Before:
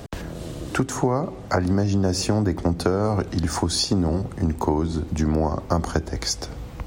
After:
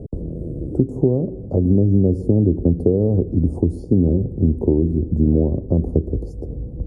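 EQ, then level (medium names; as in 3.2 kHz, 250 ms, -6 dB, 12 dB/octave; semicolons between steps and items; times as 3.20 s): Chebyshev band-stop 460–8500 Hz, order 3; low-pass 11 kHz; distance through air 440 m; +7.0 dB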